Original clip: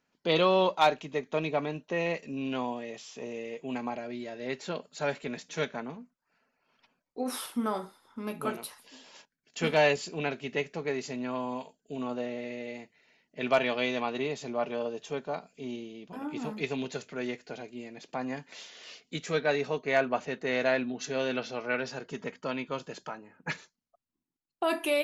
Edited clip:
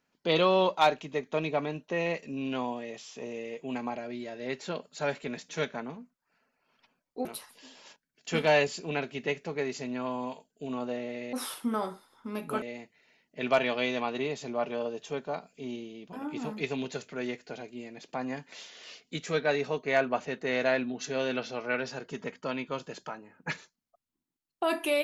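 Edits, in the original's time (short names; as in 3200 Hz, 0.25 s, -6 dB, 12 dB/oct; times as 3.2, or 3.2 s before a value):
7.25–8.54 move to 12.62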